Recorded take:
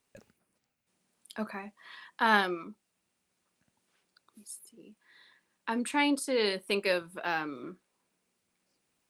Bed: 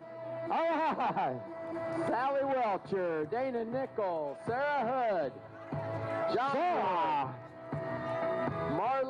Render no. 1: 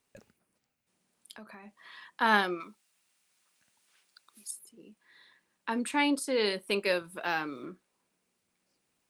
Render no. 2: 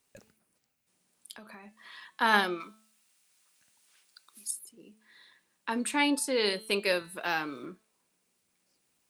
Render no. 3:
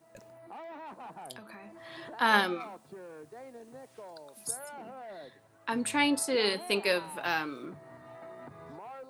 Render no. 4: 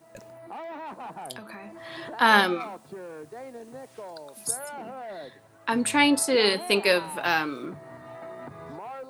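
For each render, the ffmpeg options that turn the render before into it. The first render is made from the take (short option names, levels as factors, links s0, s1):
-filter_complex "[0:a]asettb=1/sr,asplit=3[s0][s1][s2];[s0]atrim=end=1.344[s3];[s1]atrim=start=1.34:end=1.95,asetpts=PTS-STARTPTS,afade=t=in:d=0.004:c=qsin,afade=t=out:st=0.606:d=0.004:c=qsin,acompressor=threshold=0.00501:ratio=4:attack=3.2:release=140:knee=1:detection=peak[s4];[s2]atrim=start=1.946[s5];[s3][s4]acrossfade=d=0.004:c1=hsin:c2=qsin[s6];[s6][s5]acrossfade=d=0.004:c1=qsin:c2=hsin,asettb=1/sr,asplit=3[s7][s8][s9];[s7]atrim=end=2.604[s10];[s8]atrim=start=2.6:end=4.51,asetpts=PTS-STARTPTS,afade=t=in:d=0.004:c=qsin,afade=t=out:st=1.906:d=0.004:c=qsin,tiltshelf=f=780:g=-8[s11];[s9]atrim=start=4.506[s12];[s10][s11]acrossfade=d=0.004:c1=hsin:c2=qsin[s13];[s13][s12]acrossfade=d=0.004:c1=qsin:c2=hsin,asettb=1/sr,asplit=3[s14][s15][s16];[s14]atrim=end=7.044[s17];[s15]atrim=start=7.04:end=7.66,asetpts=PTS-STARTPTS,afade=t=in:d=0.004:c=qsin,afade=t=out:st=0.616:d=0.004:c=qsin,highshelf=f=4100:g=5[s18];[s16]atrim=start=7.656[s19];[s17][s18]acrossfade=d=0.004:c1=hsin:c2=qsin[s20];[s20][s19]acrossfade=d=0.004:c1=qsin:c2=hsin"
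-af "highshelf=f=3900:g=6,bandreject=f=218.8:t=h:w=4,bandreject=f=437.6:t=h:w=4,bandreject=f=656.4:t=h:w=4,bandreject=f=875.2:t=h:w=4,bandreject=f=1094:t=h:w=4,bandreject=f=1312.8:t=h:w=4,bandreject=f=1531.6:t=h:w=4,bandreject=f=1750.4:t=h:w=4,bandreject=f=1969.2:t=h:w=4,bandreject=f=2188:t=h:w=4,bandreject=f=2406.8:t=h:w=4,bandreject=f=2625.6:t=h:w=4,bandreject=f=2844.4:t=h:w=4,bandreject=f=3063.2:t=h:w=4,bandreject=f=3282:t=h:w=4,bandreject=f=3500.8:t=h:w=4,bandreject=f=3719.6:t=h:w=4,bandreject=f=3938.4:t=h:w=4,bandreject=f=4157.2:t=h:w=4,bandreject=f=4376:t=h:w=4,bandreject=f=4594.8:t=h:w=4"
-filter_complex "[1:a]volume=0.2[s0];[0:a][s0]amix=inputs=2:normalize=0"
-af "volume=2.11,alimiter=limit=0.708:level=0:latency=1"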